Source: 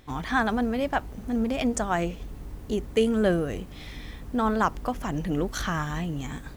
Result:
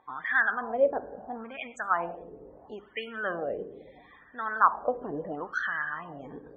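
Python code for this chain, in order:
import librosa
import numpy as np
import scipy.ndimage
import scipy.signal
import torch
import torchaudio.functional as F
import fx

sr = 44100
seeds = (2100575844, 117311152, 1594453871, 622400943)

y = fx.rev_schroeder(x, sr, rt60_s=1.0, comb_ms=31, drr_db=11.5)
y = fx.spec_topn(y, sr, count=64)
y = fx.wah_lfo(y, sr, hz=0.74, low_hz=430.0, high_hz=1900.0, q=5.0)
y = y * 10.0 ** (8.5 / 20.0)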